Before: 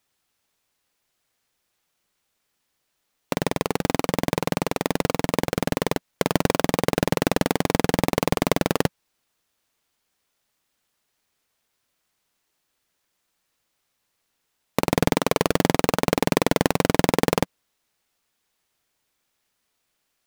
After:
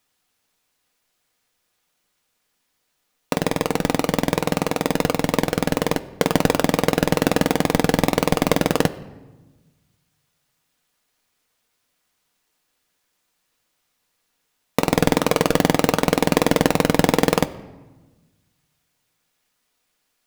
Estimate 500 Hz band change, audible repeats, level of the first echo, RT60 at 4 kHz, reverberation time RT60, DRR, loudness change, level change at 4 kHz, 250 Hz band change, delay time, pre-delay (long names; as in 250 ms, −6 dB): +3.0 dB, no echo audible, no echo audible, 0.80 s, 1.2 s, 8.5 dB, +3.0 dB, +3.0 dB, +3.5 dB, no echo audible, 4 ms